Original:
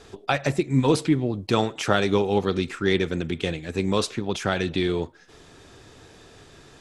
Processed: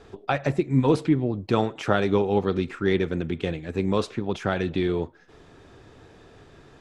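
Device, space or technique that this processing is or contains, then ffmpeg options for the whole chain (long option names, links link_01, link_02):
through cloth: -af "highshelf=frequency=3500:gain=-14"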